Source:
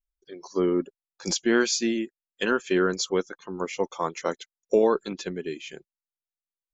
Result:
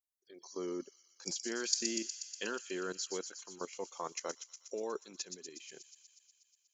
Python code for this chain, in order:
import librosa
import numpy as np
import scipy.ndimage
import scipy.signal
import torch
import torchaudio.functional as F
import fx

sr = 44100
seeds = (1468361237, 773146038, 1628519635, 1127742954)

y = fx.highpass(x, sr, hz=88.0, slope=6)
y = fx.bass_treble(y, sr, bass_db=-6, treble_db=12)
y = fx.notch(y, sr, hz=3500.0, q=13.0)
y = fx.level_steps(y, sr, step_db=15)
y = fx.echo_wet_highpass(y, sr, ms=121, feedback_pct=74, hz=5200.0, wet_db=-3)
y = F.gain(torch.from_numpy(y), -8.0).numpy()